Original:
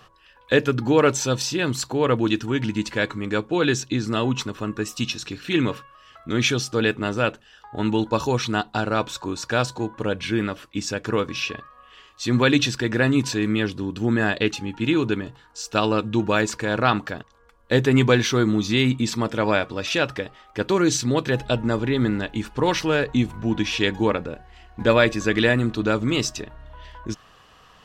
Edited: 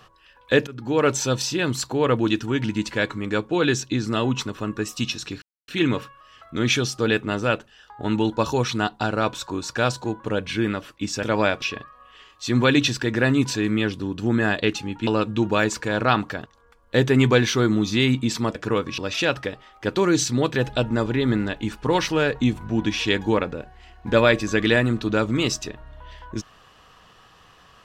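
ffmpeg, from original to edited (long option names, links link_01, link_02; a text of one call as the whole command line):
ffmpeg -i in.wav -filter_complex "[0:a]asplit=8[link_01][link_02][link_03][link_04][link_05][link_06][link_07][link_08];[link_01]atrim=end=0.67,asetpts=PTS-STARTPTS,afade=type=out:start_time=0.666:duration=0.004:curve=hsin:silence=0.0841395[link_09];[link_02]atrim=start=0.67:end=5.42,asetpts=PTS-STARTPTS,afade=type=in:duration=0.48:silence=0.0841395,afade=type=out:start_time=4.746:duration=0.004:curve=hsin,apad=pad_dur=0.26[link_10];[link_03]atrim=start=5.42:end=10.972,asetpts=PTS-STARTPTS,afade=type=in:duration=0.004:curve=hsin[link_11];[link_04]atrim=start=19.318:end=19.712[link_12];[link_05]atrim=start=11.398:end=14.852[link_13];[link_06]atrim=start=15.838:end=19.322[link_14];[link_07]atrim=start=10.968:end=11.402[link_15];[link_08]atrim=start=19.708[link_16];[link_09][link_10][link_11]concat=n=3:v=0:a=1[link_17];[link_17][link_12]acrossfade=duration=0.004:curve1=hsin:curve2=hsin[link_18];[link_18][link_13]acrossfade=duration=0.004:curve1=hsin:curve2=hsin[link_19];[link_19][link_14]acrossfade=duration=0.004:curve1=hsin:curve2=hsin[link_20];[link_20][link_15]acrossfade=duration=0.004:curve1=hsin:curve2=hsin[link_21];[link_21][link_16]acrossfade=duration=0.004:curve1=hsin:curve2=hsin" out.wav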